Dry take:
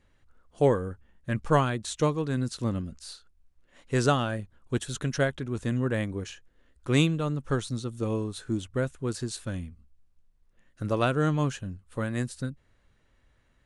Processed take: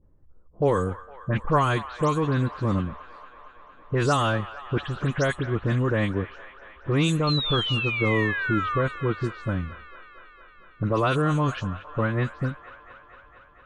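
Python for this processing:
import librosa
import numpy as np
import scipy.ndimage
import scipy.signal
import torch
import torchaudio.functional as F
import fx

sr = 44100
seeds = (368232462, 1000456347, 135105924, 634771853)

p1 = fx.spec_delay(x, sr, highs='late', ms=102)
p2 = fx.env_lowpass(p1, sr, base_hz=440.0, full_db=-21.5)
p3 = fx.peak_eq(p2, sr, hz=1100.0, db=7.0, octaves=0.4)
p4 = fx.over_compress(p3, sr, threshold_db=-29.0, ratio=-1.0)
p5 = p3 + F.gain(torch.from_numpy(p4), 1.0).numpy()
p6 = fx.spec_paint(p5, sr, seeds[0], shape='fall', start_s=7.27, length_s=1.55, low_hz=1100.0, high_hz=4300.0, level_db=-27.0)
p7 = p6 + fx.echo_wet_bandpass(p6, sr, ms=229, feedback_pct=77, hz=1500.0, wet_db=-13.5, dry=0)
y = F.gain(torch.from_numpy(p7), -1.5).numpy()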